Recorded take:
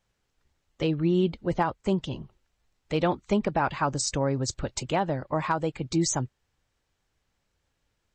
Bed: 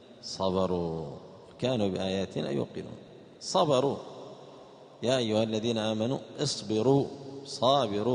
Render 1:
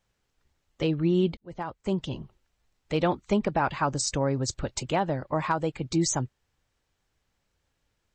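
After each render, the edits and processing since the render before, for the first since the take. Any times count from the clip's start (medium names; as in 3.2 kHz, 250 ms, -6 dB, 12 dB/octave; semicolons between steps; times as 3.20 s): 1.37–2.08 s: fade in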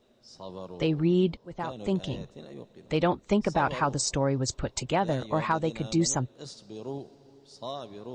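add bed -13 dB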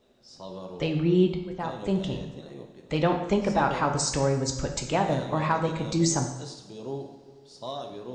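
plate-style reverb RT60 1 s, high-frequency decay 0.85×, DRR 3.5 dB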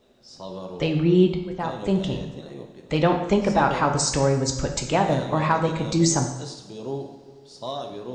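trim +4 dB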